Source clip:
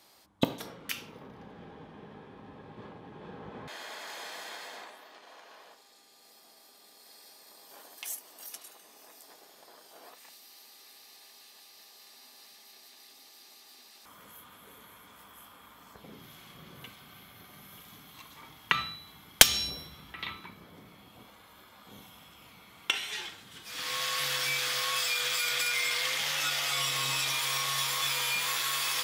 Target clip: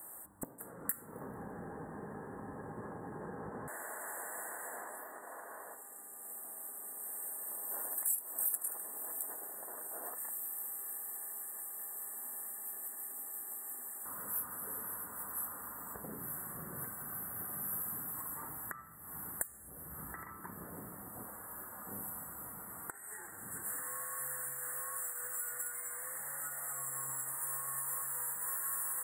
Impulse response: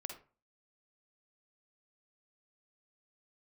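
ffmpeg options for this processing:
-af "acompressor=threshold=0.00562:ratio=10,asuperstop=centerf=3900:order=20:qfactor=0.67,bass=f=250:g=-1,treble=f=4000:g=12,volume=1.78"

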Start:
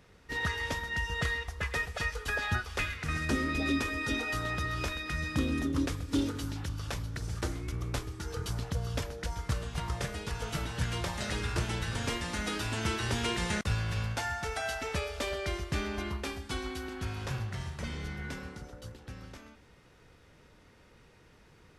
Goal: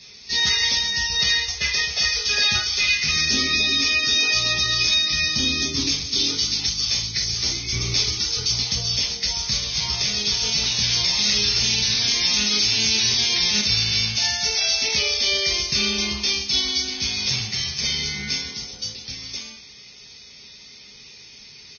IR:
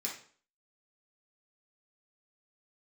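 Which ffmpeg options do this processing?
-filter_complex "[0:a]aexciter=amount=15:drive=1.6:freq=2400,asettb=1/sr,asplit=3[s0][s1][s2];[s0]atrim=end=7.724[s3];[s1]atrim=start=7.72:end=8.23,asetpts=PTS-STARTPTS,afade=t=in:d=0.004:c=qsin,afade=t=out:st=0.506:d=0.004:c=qsin,acontrast=53[s4];[s2]atrim=start=8.226[s5];[s3][s4]acrossfade=d=0.004:c1=hsin:c2=qsin[s6];[s6][s5]acrossfade=d=0.004:c1=qsin:c2=hsin,alimiter=limit=0.211:level=0:latency=1:release=15,aecho=1:1:154|308:0.0708|0.017[s7];[1:a]atrim=start_sample=2205,atrim=end_sample=3969[s8];[s7][s8]afir=irnorm=-1:irlink=0,volume=1.19" -ar 16000 -c:a libvorbis -b:a 16k

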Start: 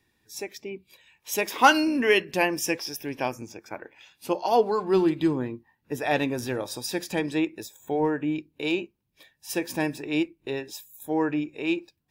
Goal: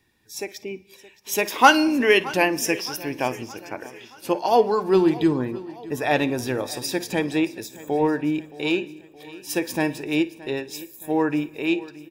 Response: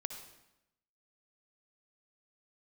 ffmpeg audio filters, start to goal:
-filter_complex "[0:a]aecho=1:1:621|1242|1863|2484:0.112|0.0572|0.0292|0.0149,asplit=2[s0][s1];[1:a]atrim=start_sample=2205,adelay=55[s2];[s1][s2]afir=irnorm=-1:irlink=0,volume=0.15[s3];[s0][s3]amix=inputs=2:normalize=0,volume=1.5"

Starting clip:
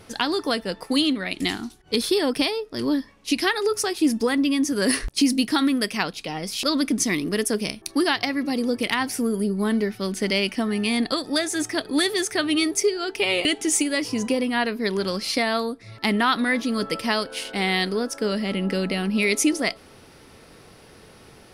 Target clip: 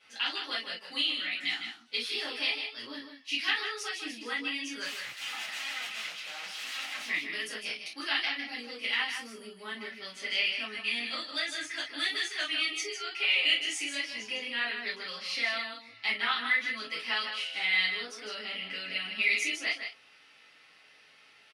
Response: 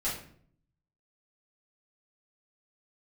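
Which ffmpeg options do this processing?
-filter_complex "[0:a]asettb=1/sr,asplit=3[s0][s1][s2];[s0]atrim=end=4.844[s3];[s1]atrim=start=4.84:end=7.06,asetpts=PTS-STARTPTS,afade=t=in:d=0.004:c=qsin,afade=t=out:st=2.216:d=0.004:c=qsin,aeval=exprs='(mod(16.8*val(0)+1,2)-1)/16.8':c=same[s4];[s2]atrim=start=7.056[s5];[s3][s4]acrossfade=d=0.004:c1=hsin:c2=qsin[s6];[s6][s5]acrossfade=d=0.004:c1=qsin:c2=hsin,bandpass=f=2700:t=q:w=1.9:csg=0,aecho=1:1:155:0.422[s7];[1:a]atrim=start_sample=2205,atrim=end_sample=3087[s8];[s7][s8]afir=irnorm=-1:irlink=0,volume=0.562"

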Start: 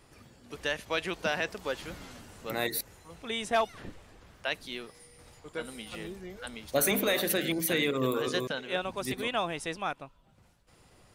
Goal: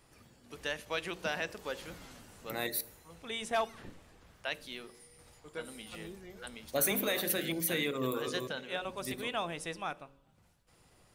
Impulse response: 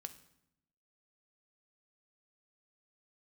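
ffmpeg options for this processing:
-filter_complex "[0:a]bandreject=f=45.78:t=h:w=4,bandreject=f=91.56:t=h:w=4,bandreject=f=137.34:t=h:w=4,bandreject=f=183.12:t=h:w=4,bandreject=f=228.9:t=h:w=4,bandreject=f=274.68:t=h:w=4,bandreject=f=320.46:t=h:w=4,bandreject=f=366.24:t=h:w=4,bandreject=f=412.02:t=h:w=4,bandreject=f=457.8:t=h:w=4,bandreject=f=503.58:t=h:w=4,bandreject=f=549.36:t=h:w=4,bandreject=f=595.14:t=h:w=4,asplit=2[s0][s1];[1:a]atrim=start_sample=2205,highshelf=f=7000:g=11.5[s2];[s1][s2]afir=irnorm=-1:irlink=0,volume=0.668[s3];[s0][s3]amix=inputs=2:normalize=0,volume=0.422"

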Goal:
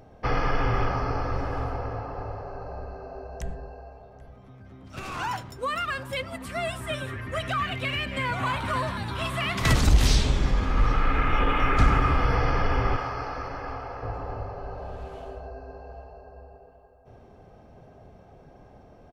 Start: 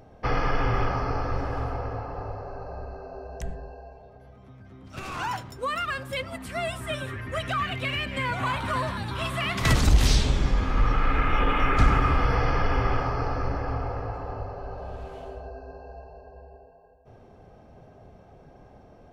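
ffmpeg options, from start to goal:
-filter_complex "[0:a]asettb=1/sr,asplit=3[s0][s1][s2];[s0]atrim=end=12.964[s3];[s1]atrim=start=12.96:end=14.03,asetpts=PTS-STARTPTS,afade=t=in:d=0.004:c=qsin,afade=t=out:st=1.066:d=0.004:c=qsin,lowshelf=f=410:g=-11.5[s4];[s2]atrim=start=14.026[s5];[s3][s4]acrossfade=d=0.004:c1=hsin:c2=qsin[s6];[s6][s5]acrossfade=d=0.004:c1=qsin:c2=hsin,asplit=2[s7][s8];[s8]adelay=784,lowpass=f=3000:p=1,volume=0.1,asplit=2[s9][s10];[s10]adelay=784,lowpass=f=3000:p=1,volume=0.5,asplit=2[s11][s12];[s12]adelay=784,lowpass=f=3000:p=1,volume=0.5,asplit=2[s13][s14];[s14]adelay=784,lowpass=f=3000:p=1,volume=0.5[s15];[s9][s11][s13][s15]amix=inputs=4:normalize=0[s16];[s7][s16]amix=inputs=2:normalize=0"

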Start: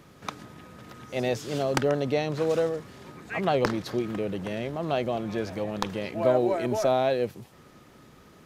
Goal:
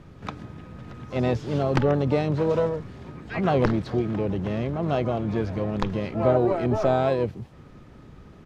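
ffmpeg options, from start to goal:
-filter_complex "[0:a]acrossover=split=7000[s0][s1];[s1]acompressor=threshold=0.00126:ratio=4:attack=1:release=60[s2];[s0][s2]amix=inputs=2:normalize=0,asplit=4[s3][s4][s5][s6];[s4]asetrate=29433,aresample=44100,atempo=1.49831,volume=0.141[s7];[s5]asetrate=55563,aresample=44100,atempo=0.793701,volume=0.158[s8];[s6]asetrate=88200,aresample=44100,atempo=0.5,volume=0.2[s9];[s3][s7][s8][s9]amix=inputs=4:normalize=0,aemphasis=mode=reproduction:type=bsi"

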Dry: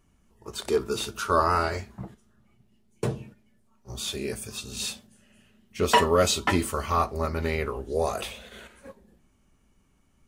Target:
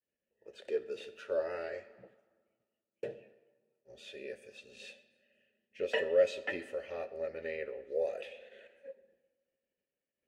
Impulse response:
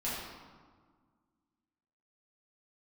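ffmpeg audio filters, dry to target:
-filter_complex "[0:a]agate=range=0.0224:threshold=0.00141:ratio=3:detection=peak,asplit=3[s0][s1][s2];[s0]bandpass=f=530:t=q:w=8,volume=1[s3];[s1]bandpass=f=1840:t=q:w=8,volume=0.501[s4];[s2]bandpass=f=2480:t=q:w=8,volume=0.355[s5];[s3][s4][s5]amix=inputs=3:normalize=0,asplit=2[s6][s7];[1:a]atrim=start_sample=2205,lowshelf=f=230:g=-10.5,adelay=65[s8];[s7][s8]afir=irnorm=-1:irlink=0,volume=0.1[s9];[s6][s9]amix=inputs=2:normalize=0"

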